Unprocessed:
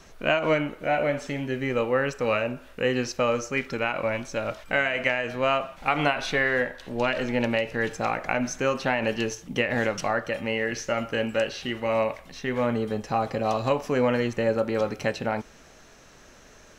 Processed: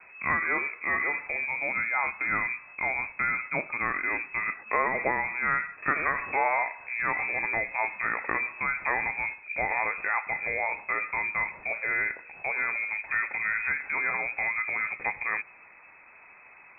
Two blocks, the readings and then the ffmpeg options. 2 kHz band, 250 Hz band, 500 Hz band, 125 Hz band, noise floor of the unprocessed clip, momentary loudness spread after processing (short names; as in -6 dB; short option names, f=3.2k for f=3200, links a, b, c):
+3.0 dB, -15.5 dB, -13.0 dB, -15.0 dB, -52 dBFS, 4 LU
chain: -filter_complex "[0:a]acrossover=split=940[a][b];[a]alimiter=level_in=0.5dB:limit=-24dB:level=0:latency=1,volume=-0.5dB[c];[c][b]amix=inputs=2:normalize=0,lowpass=f=2.2k:t=q:w=0.5098,lowpass=f=2.2k:t=q:w=0.6013,lowpass=f=2.2k:t=q:w=0.9,lowpass=f=2.2k:t=q:w=2.563,afreqshift=-2600"